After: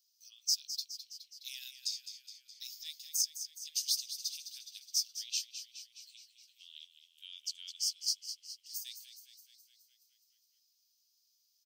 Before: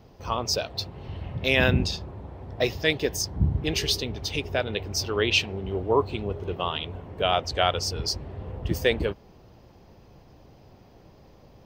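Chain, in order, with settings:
sub-octave generator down 1 octave, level +2 dB
inverse Chebyshev high-pass filter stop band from 930 Hz, stop band 80 dB
echo with shifted repeats 209 ms, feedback 62%, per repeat −54 Hz, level −10.5 dB

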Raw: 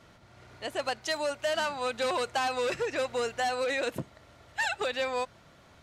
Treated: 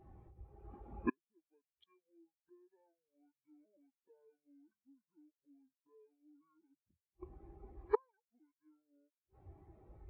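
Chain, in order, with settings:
mains-hum notches 60/120/180/240/300/360 Hz
gate with flip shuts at −31 dBFS, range −36 dB
wrong playback speed 78 rpm record played at 45 rpm
every bin expanded away from the loudest bin 2.5 to 1
level +11 dB

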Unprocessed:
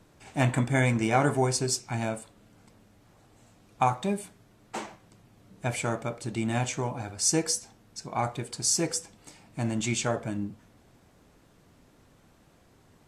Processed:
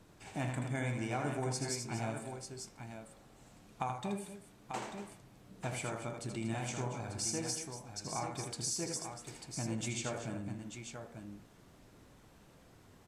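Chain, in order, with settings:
hum removal 78.55 Hz, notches 30
downward compressor 2.5 to 1, threshold −38 dBFS, peak gain reduction 13 dB
multi-tap delay 80/236/892 ms −6/−11.5/−7.5 dB
level −2 dB

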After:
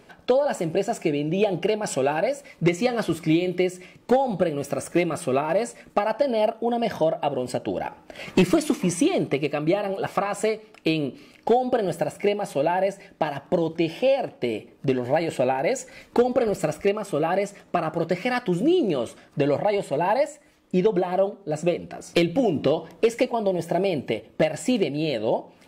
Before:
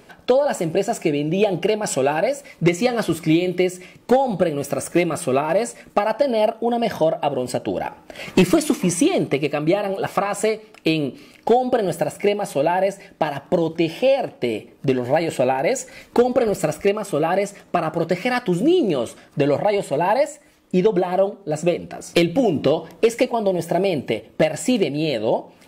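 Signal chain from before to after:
high-shelf EQ 8,600 Hz −6 dB
level −3.5 dB

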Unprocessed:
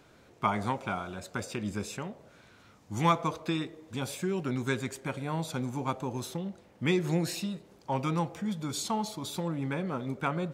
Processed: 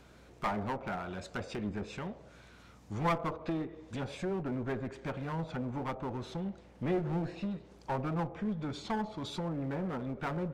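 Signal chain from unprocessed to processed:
treble cut that deepens with the level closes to 1,300 Hz, closed at −28.5 dBFS
asymmetric clip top −34.5 dBFS
mains hum 60 Hz, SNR 25 dB

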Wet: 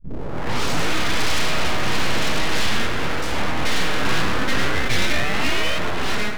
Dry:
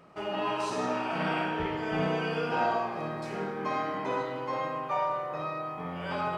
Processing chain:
turntable start at the beginning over 0.94 s
automatic gain control gain up to 16 dB
echo with a time of its own for lows and highs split 300 Hz, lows 373 ms, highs 526 ms, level −14.5 dB
sine wavefolder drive 9 dB, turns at −2 dBFS
sound drawn into the spectrogram rise, 0:04.01–0:05.79, 580–1,900 Hz −14 dBFS
full-wave rectification
parametric band 820 Hz −4.5 dB 2.5 octaves
level −9 dB

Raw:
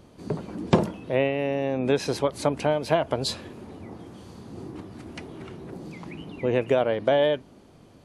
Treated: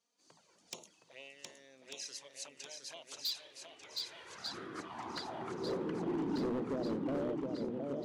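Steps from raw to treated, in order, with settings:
camcorder AGC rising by 12 dB per second
low-shelf EQ 110 Hz −3 dB
mains-hum notches 50/100/150/200/250/300 Hz
flanger swept by the level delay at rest 4.5 ms, full sweep at −18 dBFS
band-pass filter sweep 6,400 Hz → 220 Hz, 0:02.89–0:06.71
feedback echo with a long and a short gap by turns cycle 1,194 ms, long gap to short 1.5 to 1, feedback 49%, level −5 dB
hard clipping −30 dBFS, distortion −11 dB
one half of a high-frequency compander decoder only
level −1.5 dB

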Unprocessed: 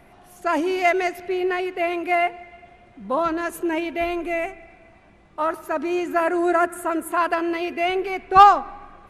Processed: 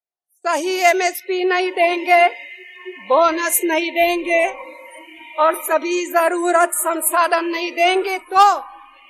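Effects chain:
on a send: feedback delay with all-pass diffusion 1,412 ms, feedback 41%, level −14 dB
on the sum: noise reduction from a noise print of the clip's start 27 dB
noise gate with hold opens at −40 dBFS
low shelf with overshoot 300 Hz −12.5 dB, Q 1.5
automatic gain control gain up to 11.5 dB
bass and treble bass −3 dB, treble +15 dB
level −2 dB

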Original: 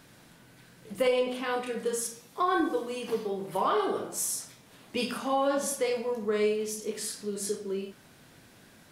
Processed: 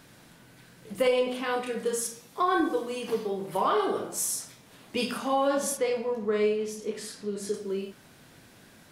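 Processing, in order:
0:05.77–0:07.54: low-pass filter 3,400 Hz 6 dB per octave
level +1.5 dB

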